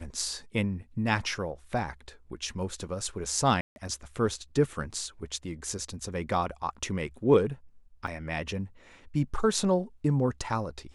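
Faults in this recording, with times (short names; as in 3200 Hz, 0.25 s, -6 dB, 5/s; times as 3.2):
3.61–3.76 gap 0.151 s
8.07 gap 4.4 ms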